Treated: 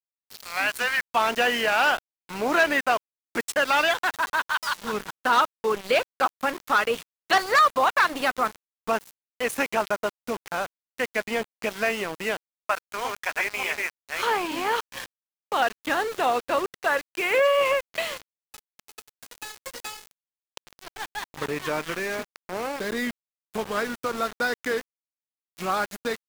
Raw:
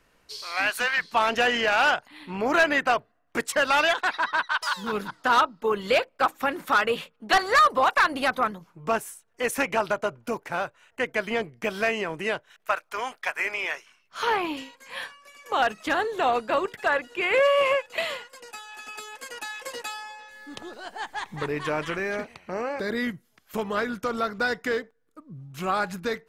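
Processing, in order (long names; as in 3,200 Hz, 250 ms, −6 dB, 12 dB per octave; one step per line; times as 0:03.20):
0:12.75–0:14.97: delay that plays each chunk backwards 294 ms, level −1 dB
high-pass filter 120 Hz 12 dB per octave
centre clipping without the shift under −31.5 dBFS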